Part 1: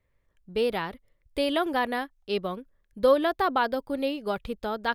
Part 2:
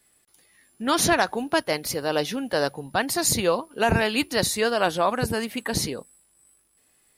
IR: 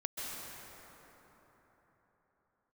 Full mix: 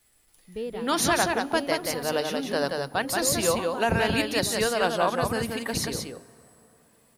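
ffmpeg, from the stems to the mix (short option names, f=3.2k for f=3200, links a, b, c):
-filter_complex "[0:a]lowshelf=f=480:g=11,volume=-13.5dB,asplit=2[a][b];[b]volume=-3.5dB[c];[1:a]bandreject=f=50.23:t=h:w=4,bandreject=f=100.46:t=h:w=4,bandreject=f=150.69:t=h:w=4,bandreject=f=200.92:t=h:w=4,bandreject=f=251.15:t=h:w=4,bandreject=f=301.38:t=h:w=4,bandreject=f=351.61:t=h:w=4,bandreject=f=401.84:t=h:w=4,volume=-3.5dB,asplit=4[d][e][f][g];[e]volume=-21.5dB[h];[f]volume=-3.5dB[i];[g]apad=whole_len=218087[j];[a][j]sidechaincompress=threshold=-40dB:ratio=8:attack=16:release=390[k];[2:a]atrim=start_sample=2205[l];[h][l]afir=irnorm=-1:irlink=0[m];[c][i]amix=inputs=2:normalize=0,aecho=0:1:179:1[n];[k][d][m][n]amix=inputs=4:normalize=0,acrusher=bits=10:mix=0:aa=0.000001"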